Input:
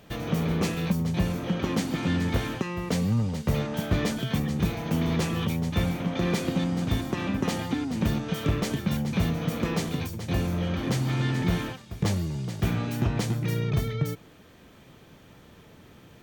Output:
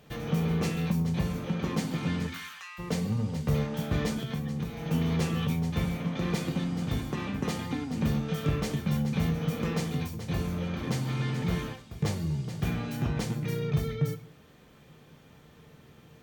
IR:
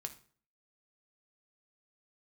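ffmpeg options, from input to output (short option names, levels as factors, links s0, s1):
-filter_complex "[0:a]asplit=3[s0][s1][s2];[s0]afade=t=out:st=2.26:d=0.02[s3];[s1]highpass=f=1200:w=0.5412,highpass=f=1200:w=1.3066,afade=t=in:st=2.26:d=0.02,afade=t=out:st=2.78:d=0.02[s4];[s2]afade=t=in:st=2.78:d=0.02[s5];[s3][s4][s5]amix=inputs=3:normalize=0,asettb=1/sr,asplit=3[s6][s7][s8];[s6]atrim=end=4.174[s9];[s7]atrim=start=4.17:end=4.85,asetpts=PTS-STARTPTS,afade=t=in:d=0.004:c=qsin,afade=t=out:st=0.676:d=0.004:c=qsin,acompressor=threshold=0.0398:ratio=6[s10];[s8]atrim=start=4.846[s11];[s9][s10]acrossfade=d=0.004:c1=hsin:c2=qsin[s12];[s12][s11]acrossfade=d=0.004:c1=qsin:c2=hsin[s13];[1:a]atrim=start_sample=2205,asetrate=48510,aresample=44100[s14];[s13][s14]afir=irnorm=-1:irlink=0"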